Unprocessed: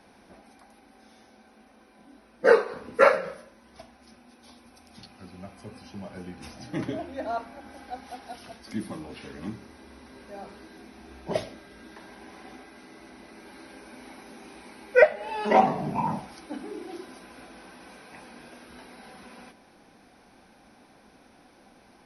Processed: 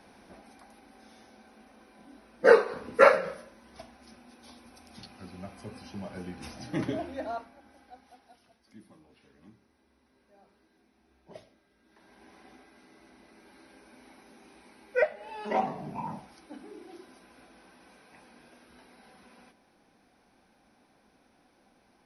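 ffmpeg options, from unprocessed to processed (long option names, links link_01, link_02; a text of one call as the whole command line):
ffmpeg -i in.wav -af "volume=11dB,afade=type=out:start_time=7.06:duration=0.45:silence=0.281838,afade=type=out:start_time=7.51:duration=0.99:silence=0.354813,afade=type=in:start_time=11.84:duration=0.42:silence=0.281838" out.wav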